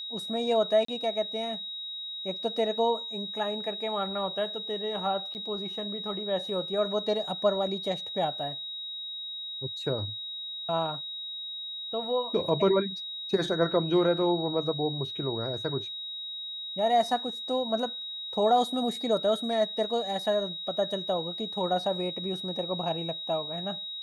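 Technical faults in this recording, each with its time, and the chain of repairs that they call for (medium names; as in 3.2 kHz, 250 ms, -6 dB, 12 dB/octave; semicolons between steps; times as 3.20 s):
whine 3.8 kHz -35 dBFS
0.85–0.88 s: dropout 34 ms
5.34–5.35 s: dropout 9 ms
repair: band-stop 3.8 kHz, Q 30; interpolate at 0.85 s, 34 ms; interpolate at 5.34 s, 9 ms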